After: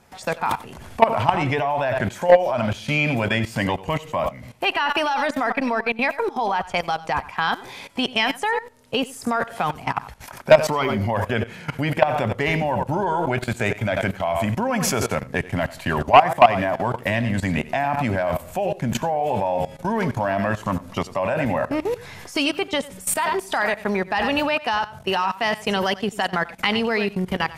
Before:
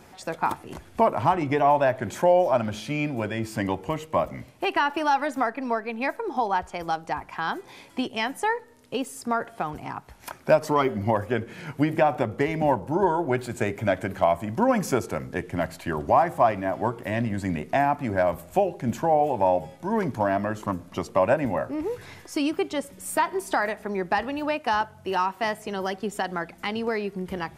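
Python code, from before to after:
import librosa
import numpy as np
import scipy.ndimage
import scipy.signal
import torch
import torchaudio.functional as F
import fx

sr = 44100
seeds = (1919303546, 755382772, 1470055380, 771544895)

y = fx.peak_eq(x, sr, hz=330.0, db=-8.5, octaves=0.48)
y = y + 10.0 ** (-13.0 / 20.0) * np.pad(y, (int(92 * sr / 1000.0), 0))[:len(y)]
y = fx.level_steps(y, sr, step_db=17)
y = fx.fold_sine(y, sr, drive_db=7, ceiling_db=-5.0)
y = fx.dynamic_eq(y, sr, hz=3000.0, q=1.1, threshold_db=-42.0, ratio=4.0, max_db=6)
y = fx.band_squash(y, sr, depth_pct=40, at=(8.94, 9.86))
y = y * 10.0 ** (1.0 / 20.0)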